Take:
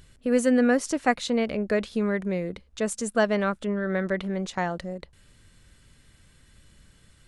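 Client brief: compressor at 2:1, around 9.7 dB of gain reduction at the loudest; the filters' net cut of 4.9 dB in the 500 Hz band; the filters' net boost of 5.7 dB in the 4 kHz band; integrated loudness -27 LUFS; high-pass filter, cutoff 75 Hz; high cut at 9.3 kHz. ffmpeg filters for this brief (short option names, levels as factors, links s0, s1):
-af "highpass=75,lowpass=9300,equalizer=f=500:t=o:g=-6,equalizer=f=4000:t=o:g=7,acompressor=threshold=0.0141:ratio=2,volume=2.66"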